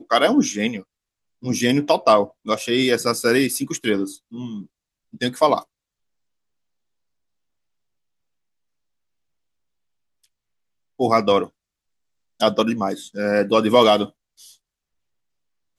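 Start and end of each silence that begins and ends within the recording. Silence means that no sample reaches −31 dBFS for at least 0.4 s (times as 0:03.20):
0:00.80–0:01.43
0:04.62–0:05.14
0:05.60–0:11.00
0:11.46–0:12.40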